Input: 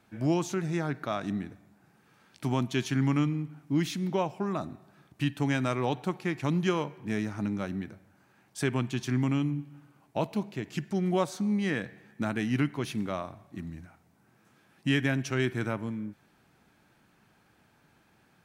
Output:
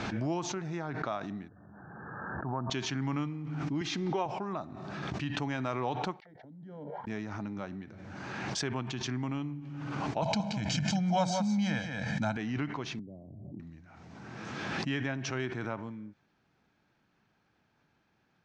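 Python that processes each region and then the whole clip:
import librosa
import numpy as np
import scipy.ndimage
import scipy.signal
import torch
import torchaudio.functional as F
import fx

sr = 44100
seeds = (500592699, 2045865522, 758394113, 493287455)

y = fx.chain(x, sr, fx.brickwall_lowpass(high_hz=1800.0),
    fx.peak_eq(hz=270.0, db=-4.5, octaves=1.3),
    fx.sustainer(db_per_s=63.0), at=(1.48, 2.7))
y = fx.chain(y, sr, fx.comb(ms=2.5, depth=0.42),
    fx.band_squash(depth_pct=40), at=(3.81, 4.26))
y = fx.chain(y, sr, fx.level_steps(step_db=11),
    fx.fixed_phaser(hz=1700.0, stages=8),
    fx.auto_wah(base_hz=290.0, top_hz=2500.0, q=4.7, full_db=-36.0, direction='down'), at=(6.2, 7.07))
y = fx.chain(y, sr, fx.bass_treble(bass_db=5, treble_db=12),
    fx.comb(ms=1.3, depth=0.95),
    fx.echo_single(ms=175, db=-7.0), at=(10.22, 12.37))
y = fx.chain(y, sr, fx.gaussian_blur(sigma=20.0),
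    fx.band_squash(depth_pct=100), at=(12.99, 13.6))
y = scipy.signal.sosfilt(scipy.signal.butter(6, 6400.0, 'lowpass', fs=sr, output='sos'), y)
y = fx.dynamic_eq(y, sr, hz=890.0, q=0.99, threshold_db=-46.0, ratio=4.0, max_db=7)
y = fx.pre_swell(y, sr, db_per_s=24.0)
y = y * 10.0 ** (-8.5 / 20.0)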